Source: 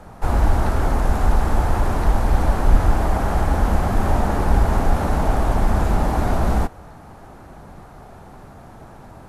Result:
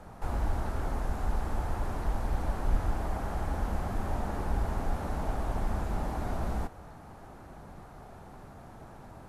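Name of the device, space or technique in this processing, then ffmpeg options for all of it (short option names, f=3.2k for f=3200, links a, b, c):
de-esser from a sidechain: -filter_complex "[0:a]asplit=2[a][b];[b]highpass=4.2k,apad=whole_len=409600[c];[a][c]sidechaincompress=threshold=-49dB:ratio=4:attack=1.7:release=22,volume=-7dB"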